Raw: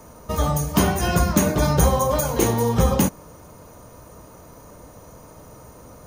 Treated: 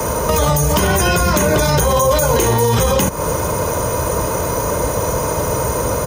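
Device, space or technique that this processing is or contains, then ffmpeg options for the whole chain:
mastering chain: -filter_complex "[0:a]highpass=40,equalizer=f=4400:t=o:w=0.34:g=-2.5,aecho=1:1:2:0.4,acrossover=split=91|720|1700[s0][s1][s2][s3];[s0]acompressor=threshold=0.0224:ratio=4[s4];[s1]acompressor=threshold=0.0355:ratio=4[s5];[s2]acompressor=threshold=0.0141:ratio=4[s6];[s3]acompressor=threshold=0.0251:ratio=4[s7];[s4][s5][s6][s7]amix=inputs=4:normalize=0,acompressor=threshold=0.0224:ratio=1.5,asoftclip=type=hard:threshold=0.106,alimiter=level_in=31.6:limit=0.891:release=50:level=0:latency=1,lowshelf=f=230:g=-3,volume=0.631"

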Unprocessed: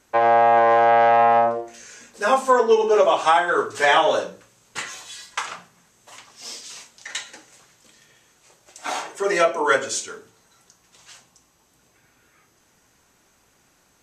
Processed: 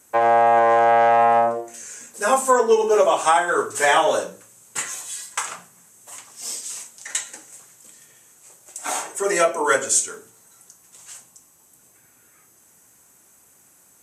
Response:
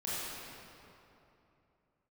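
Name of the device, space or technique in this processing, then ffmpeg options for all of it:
budget condenser microphone: -af "highpass=80,highshelf=f=6400:t=q:w=1.5:g=12"

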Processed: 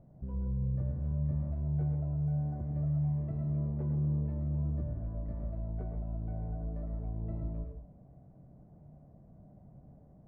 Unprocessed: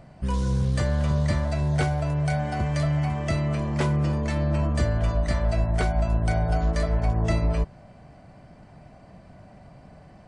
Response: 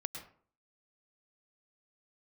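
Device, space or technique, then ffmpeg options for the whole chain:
television next door: -filter_complex "[0:a]asettb=1/sr,asplit=3[s0][s1][s2];[s0]atrim=end=2.184[s3];[s1]atrim=start=2.18:end=2.75,asetpts=PTS-STARTPTS,afade=t=in:d=0.004:c=qsin,afade=t=out:st=0.566:d=0.004:c=qsin,highshelf=f=4900:t=q:w=3:g=14[s4];[s2]atrim=start=2.746[s5];[s3][s4]acrossfade=d=0.004:c1=hsin:c2=qsin[s6];[s6][s5]acrossfade=d=0.004:c1=qsin:c2=hsin,acompressor=threshold=0.0398:ratio=3,lowpass=490[s7];[1:a]atrim=start_sample=2205[s8];[s7][s8]afir=irnorm=-1:irlink=0,volume=0.447"

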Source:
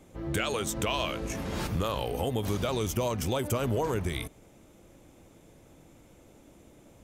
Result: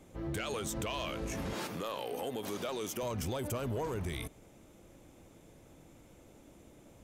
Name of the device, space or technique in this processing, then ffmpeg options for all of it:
soft clipper into limiter: -filter_complex "[0:a]asettb=1/sr,asplit=3[s0][s1][s2];[s0]atrim=end=1.534[s3];[s1]atrim=start=1.53:end=3.03,asetpts=PTS-STARTPTS,afade=t=in:d=0.004:c=qsin,afade=t=out:st=1.496:d=0.004:c=qsin,highpass=260[s4];[s2]atrim=start=3.026[s5];[s3][s4]acrossfade=d=0.004:c1=hsin:c2=qsin[s6];[s6][s5]acrossfade=d=0.004:c1=qsin:c2=hsin,asoftclip=type=tanh:threshold=0.075,alimiter=level_in=1.5:limit=0.0631:level=0:latency=1:release=35,volume=0.668,volume=0.794"

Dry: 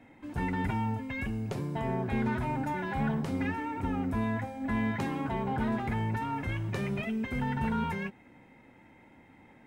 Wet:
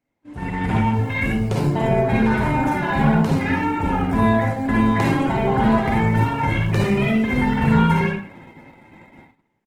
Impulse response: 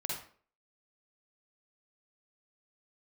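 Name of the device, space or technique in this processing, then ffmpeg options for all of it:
speakerphone in a meeting room: -filter_complex "[1:a]atrim=start_sample=2205[s0];[0:a][s0]afir=irnorm=-1:irlink=0,asplit=2[s1][s2];[s2]adelay=130,highpass=300,lowpass=3400,asoftclip=type=hard:threshold=0.0447,volume=0.0631[s3];[s1][s3]amix=inputs=2:normalize=0,dynaudnorm=f=130:g=9:m=3.98,agate=range=0.0794:threshold=0.00794:ratio=16:detection=peak" -ar 48000 -c:a libopus -b:a 16k

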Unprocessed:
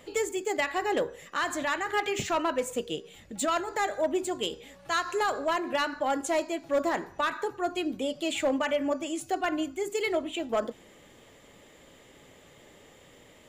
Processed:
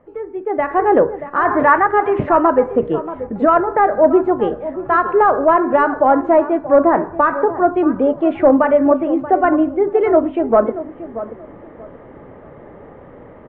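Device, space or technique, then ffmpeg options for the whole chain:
action camera in a waterproof case: -filter_complex "[0:a]asettb=1/sr,asplit=3[s0][s1][s2];[s0]atrim=end=1.454[s3];[s1]atrim=start=1.45:end=1.87,asetpts=PTS-STARTPTS,afade=t=in:d=0.004:c=qsin,afade=t=out:st=0.416:d=0.004:c=qsin,equalizer=f=125:t=o:w=1:g=7,equalizer=f=1000:t=o:w=1:g=6,equalizer=f=2000:t=o:w=1:g=6[s4];[s2]atrim=start=1.866[s5];[s3][s4]acrossfade=d=0.004:c1=hsin:c2=qsin[s6];[s6][s5]acrossfade=d=0.004:c1=qsin:c2=hsin,lowpass=f=1400:w=0.5412,lowpass=f=1400:w=1.3066,asplit=2[s7][s8];[s8]adelay=632,lowpass=f=1300:p=1,volume=0.224,asplit=2[s9][s10];[s10]adelay=632,lowpass=f=1300:p=1,volume=0.24,asplit=2[s11][s12];[s12]adelay=632,lowpass=f=1300:p=1,volume=0.24[s13];[s7][s9][s11][s13]amix=inputs=4:normalize=0,dynaudnorm=f=220:g=5:m=6.31,volume=1.12" -ar 22050 -c:a aac -b:a 64k

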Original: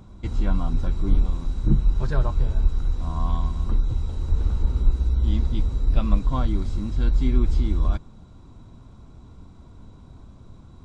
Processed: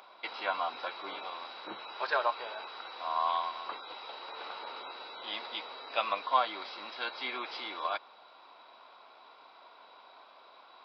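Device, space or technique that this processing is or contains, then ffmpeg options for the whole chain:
musical greeting card: -af "aresample=11025,aresample=44100,highpass=f=640:w=0.5412,highpass=f=640:w=1.3066,equalizer=f=2500:t=o:w=0.47:g=4.5,volume=2.11"

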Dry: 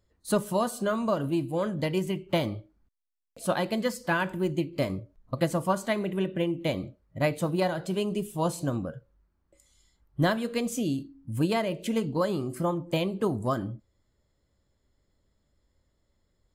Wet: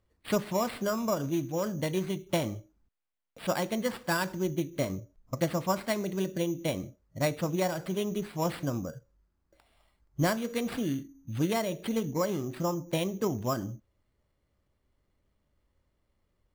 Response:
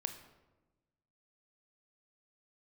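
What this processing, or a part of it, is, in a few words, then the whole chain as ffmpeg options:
crushed at another speed: -af "asetrate=22050,aresample=44100,acrusher=samples=14:mix=1:aa=0.000001,asetrate=88200,aresample=44100,volume=0.75"

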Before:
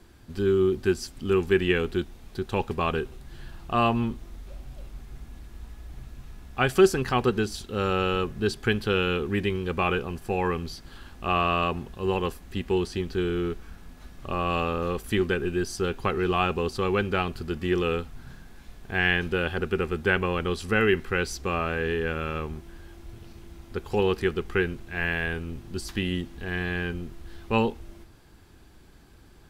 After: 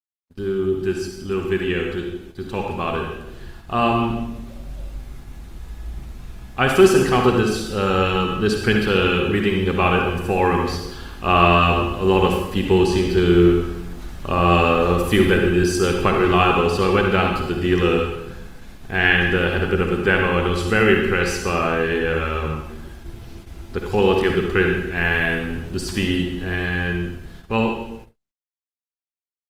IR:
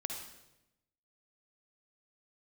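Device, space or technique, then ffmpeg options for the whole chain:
speakerphone in a meeting room: -filter_complex "[1:a]atrim=start_sample=2205[s0];[0:a][s0]afir=irnorm=-1:irlink=0,dynaudnorm=f=780:g=9:m=5.01,agate=range=0.001:threshold=0.0126:ratio=16:detection=peak" -ar 48000 -c:a libopus -b:a 32k

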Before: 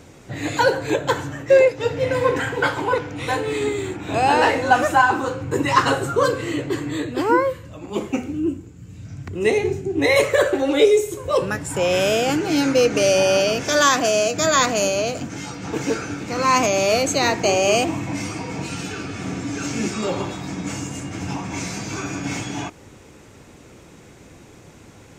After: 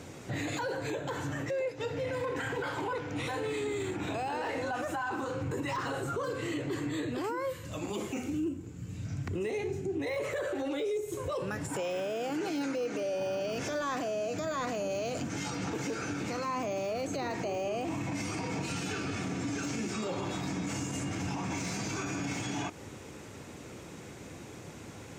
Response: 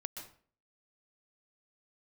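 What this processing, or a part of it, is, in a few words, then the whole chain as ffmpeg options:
podcast mastering chain: -filter_complex "[0:a]asettb=1/sr,asplit=3[s0][s1][s2];[s0]atrim=end=7.244[s3];[s1]atrim=start=7.24:end=8.49,asetpts=PTS-STARTPTS,afade=t=in:d=0.004:c=qsin,afade=t=out:st=1.246:d=0.004:c=qsin,highshelf=f=3200:g=9.5[s4];[s2]atrim=start=8.486[s5];[s3][s4]acrossfade=d=0.004:c1=hsin:c2=qsin[s6];[s6][s5]acrossfade=d=0.004:c1=qsin:c2=hsin,asettb=1/sr,asplit=3[s7][s8][s9];[s7]atrim=end=11.684[s10];[s8]atrim=start=11.68:end=13.2,asetpts=PTS-STARTPTS,afade=t=in:d=0.004:c=qsin,afade=t=out:st=1.516:d=0.004:c=qsin,highpass=200[s11];[s9]atrim=start=13.196[s12];[s10][s11]acrossfade=d=0.004:c1=hsin:c2=qsin[s13];[s13][s12]acrossfade=d=0.004:c1=qsin:c2=hsin,highpass=71,deesser=0.7,acompressor=threshold=0.0316:ratio=3,alimiter=level_in=1.26:limit=0.0631:level=0:latency=1:release=23,volume=0.794" -ar 44100 -c:a libmp3lame -b:a 112k

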